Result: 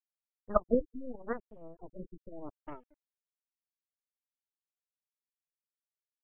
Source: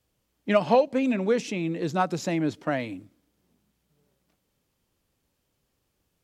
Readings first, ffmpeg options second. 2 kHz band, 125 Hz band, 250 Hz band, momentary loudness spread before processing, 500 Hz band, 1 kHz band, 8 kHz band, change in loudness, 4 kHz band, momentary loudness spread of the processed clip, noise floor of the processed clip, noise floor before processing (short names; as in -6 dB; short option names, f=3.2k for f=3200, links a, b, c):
-19.0 dB, -18.5 dB, -13.0 dB, 11 LU, -10.5 dB, -13.0 dB, under -35 dB, -9.5 dB, under -40 dB, 21 LU, under -85 dBFS, -76 dBFS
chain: -af "afftfilt=real='re*gte(hypot(re,im),0.2)':imag='im*gte(hypot(re,im),0.2)':win_size=1024:overlap=0.75,aeval=exprs='val(0)*gte(abs(val(0)),0.00668)':c=same,aeval=exprs='0.376*(cos(1*acos(clip(val(0)/0.376,-1,1)))-cos(1*PI/2))+0.119*(cos(2*acos(clip(val(0)/0.376,-1,1)))-cos(2*PI/2))+0.133*(cos(3*acos(clip(val(0)/0.376,-1,1)))-cos(3*PI/2))+0.0075*(cos(5*acos(clip(val(0)/0.376,-1,1)))-cos(5*PI/2))+0.0211*(cos(8*acos(clip(val(0)/0.376,-1,1)))-cos(8*PI/2))':c=same,afftfilt=real='re*lt(b*sr/1024,440*pow(3500/440,0.5+0.5*sin(2*PI*0.81*pts/sr)))':imag='im*lt(b*sr/1024,440*pow(3500/440,0.5+0.5*sin(2*PI*0.81*pts/sr)))':win_size=1024:overlap=0.75"